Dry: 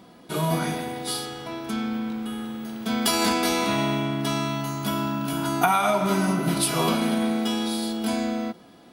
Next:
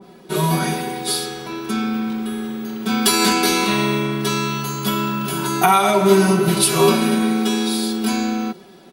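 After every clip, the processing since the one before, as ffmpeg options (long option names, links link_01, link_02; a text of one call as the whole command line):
ffmpeg -i in.wav -af "equalizer=frequency=400:width_type=o:width=0.22:gain=11,aecho=1:1:5.3:0.81,adynamicequalizer=threshold=0.0158:dfrequency=1800:dqfactor=0.7:tfrequency=1800:tqfactor=0.7:attack=5:release=100:ratio=0.375:range=2:mode=boostabove:tftype=highshelf,volume=2dB" out.wav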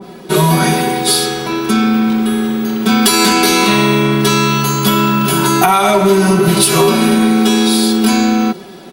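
ffmpeg -i in.wav -af "acompressor=threshold=-17dB:ratio=6,asoftclip=type=tanh:threshold=-10dB,acontrast=65,volume=4.5dB" out.wav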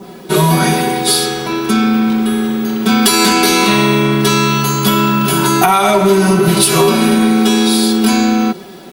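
ffmpeg -i in.wav -af "acrusher=bits=7:mix=0:aa=0.000001" out.wav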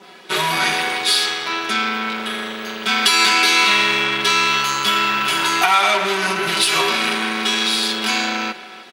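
ffmpeg -i in.wav -filter_complex "[0:a]aeval=exprs='0.891*(cos(1*acos(clip(val(0)/0.891,-1,1)))-cos(1*PI/2))+0.0891*(cos(8*acos(clip(val(0)/0.891,-1,1)))-cos(8*PI/2))':channel_layout=same,bandpass=frequency=2500:width_type=q:width=0.93:csg=0,asplit=2[link_01][link_02];[link_02]adelay=310,highpass=300,lowpass=3400,asoftclip=type=hard:threshold=-12.5dB,volume=-15dB[link_03];[link_01][link_03]amix=inputs=2:normalize=0,volume=2dB" out.wav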